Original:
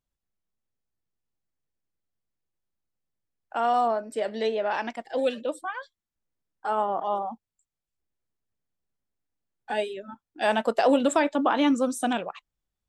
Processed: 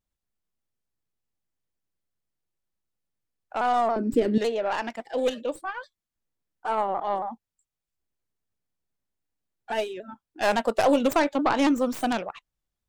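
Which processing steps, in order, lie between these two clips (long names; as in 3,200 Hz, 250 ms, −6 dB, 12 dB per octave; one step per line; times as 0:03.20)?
stylus tracing distortion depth 0.17 ms
0:03.96–0:04.38: low shelf with overshoot 460 Hz +12.5 dB, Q 3
pitch modulation by a square or saw wave saw down 3.6 Hz, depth 100 cents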